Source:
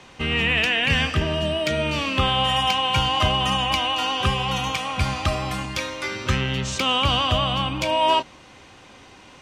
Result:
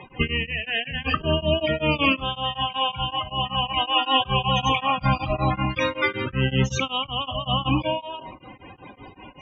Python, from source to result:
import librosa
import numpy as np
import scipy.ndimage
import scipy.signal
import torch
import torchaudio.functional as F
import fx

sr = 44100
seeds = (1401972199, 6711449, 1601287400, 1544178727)

y = fx.high_shelf(x, sr, hz=5500.0, db=-7.0, at=(5.44, 6.53))
y = fx.over_compress(y, sr, threshold_db=-25.0, ratio=-0.5)
y = fx.spec_topn(y, sr, count=32)
y = fx.room_shoebox(y, sr, seeds[0], volume_m3=400.0, walls='furnished', distance_m=0.41)
y = y * np.abs(np.cos(np.pi * 5.3 * np.arange(len(y)) / sr))
y = F.gain(torch.from_numpy(y), 5.5).numpy()